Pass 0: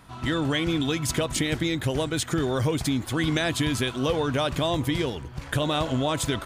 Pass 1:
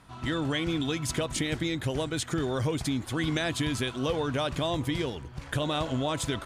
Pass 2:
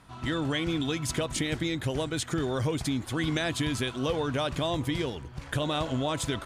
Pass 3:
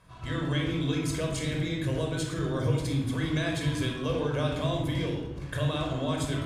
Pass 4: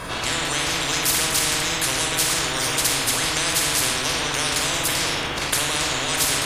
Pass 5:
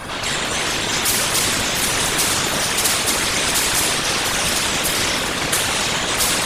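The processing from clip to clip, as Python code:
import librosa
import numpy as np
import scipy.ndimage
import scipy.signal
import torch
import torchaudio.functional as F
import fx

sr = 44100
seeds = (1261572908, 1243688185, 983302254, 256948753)

y1 = scipy.signal.sosfilt(scipy.signal.butter(2, 12000.0, 'lowpass', fs=sr, output='sos'), x)
y1 = F.gain(torch.from_numpy(y1), -4.0).numpy()
y2 = y1
y3 = fx.room_shoebox(y2, sr, seeds[0], volume_m3=3100.0, walls='furnished', distance_m=5.4)
y3 = F.gain(torch.from_numpy(y3), -7.0).numpy()
y4 = fx.spectral_comp(y3, sr, ratio=10.0)
y4 = F.gain(torch.from_numpy(y4), 8.5).numpy()
y5 = fx.echo_alternate(y4, sr, ms=350, hz=2100.0, feedback_pct=72, wet_db=-4.5)
y5 = fx.whisperise(y5, sr, seeds[1])
y5 = F.gain(torch.from_numpy(y5), 2.0).numpy()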